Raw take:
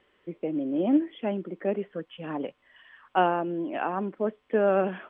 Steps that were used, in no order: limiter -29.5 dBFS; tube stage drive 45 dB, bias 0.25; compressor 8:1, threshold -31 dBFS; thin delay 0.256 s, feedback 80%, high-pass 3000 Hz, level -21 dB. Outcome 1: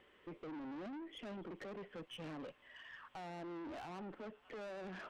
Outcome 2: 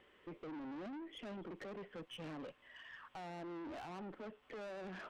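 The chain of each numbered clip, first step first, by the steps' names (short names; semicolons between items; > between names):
thin delay > compressor > limiter > tube stage; compressor > thin delay > limiter > tube stage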